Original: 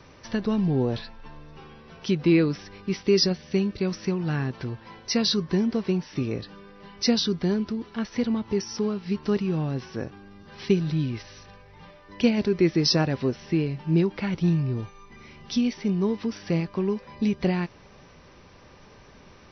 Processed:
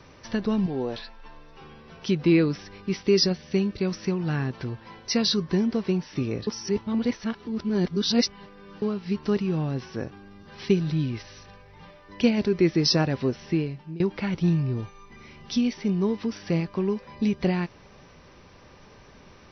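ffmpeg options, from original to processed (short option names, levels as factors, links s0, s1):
-filter_complex "[0:a]asettb=1/sr,asplit=3[s0][s1][s2];[s0]atrim=end=0.664[s3];[s1]atrim=start=0.66:end=1.61,asetpts=PTS-STARTPTS,afade=t=in:d=0.004:c=qsin,afade=t=out:st=0.946:d=0.004:c=qsin,equalizer=f=110:w=0.6:g=-13[s4];[s2]atrim=start=1.606[s5];[s3][s4]acrossfade=d=0.004:c1=hsin:c2=qsin[s6];[s6][s5]acrossfade=d=0.004:c1=qsin:c2=hsin,asplit=4[s7][s8][s9][s10];[s7]atrim=end=6.472[s11];[s8]atrim=start=6.468:end=8.822,asetpts=PTS-STARTPTS,areverse[s12];[s9]atrim=start=8.818:end=14,asetpts=PTS-STARTPTS,afade=t=out:st=4.702:d=0.48:silence=0.0707946[s13];[s10]atrim=start=14,asetpts=PTS-STARTPTS,afade=t=in:d=0.004:c=hsin:silence=0.0707946[s14];[s11][s12]acrossfade=d=0.004:c1=hsin:c2=hsin[s15];[s13][s14]concat=n=2:v=0:a=1[s16];[s15][s16]acrossfade=d=0.004:c1=hsin:c2=hsin"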